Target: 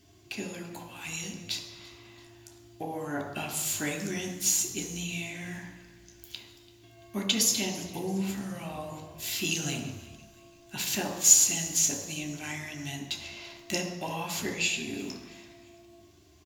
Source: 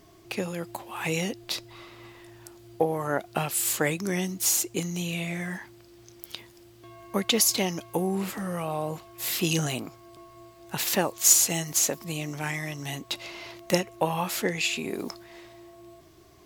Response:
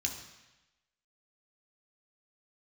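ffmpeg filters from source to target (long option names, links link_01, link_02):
-filter_complex "[0:a]asettb=1/sr,asplit=3[link_01][link_02][link_03];[link_01]atrim=end=0.884[link_04];[link_02]atrim=start=0.88:end=1.33,asetpts=PTS-STARTPTS,afade=type=in:duration=0.004:curve=qsin,afade=type=out:start_time=0.446:duration=0.004:curve=qsin,acrossover=split=160|3000[link_05][link_06][link_07];[link_06]acompressor=threshold=-39dB:ratio=3[link_08];[link_05][link_08][link_07]amix=inputs=3:normalize=0[link_09];[link_03]atrim=start=1.326[link_10];[link_04][link_09]acrossfade=duration=0.004:curve1=hsin:curve2=qsin[link_11];[link_11][link_10]acrossfade=duration=0.004:curve1=qsin:curve2=hsin,asplit=4[link_12][link_13][link_14][link_15];[link_13]adelay=337,afreqshift=-58,volume=-20.5dB[link_16];[link_14]adelay=674,afreqshift=-116,volume=-27.6dB[link_17];[link_15]adelay=1011,afreqshift=-174,volume=-34.8dB[link_18];[link_12][link_16][link_17][link_18]amix=inputs=4:normalize=0[link_19];[1:a]atrim=start_sample=2205[link_20];[link_19][link_20]afir=irnorm=-1:irlink=0,volume=-7dB"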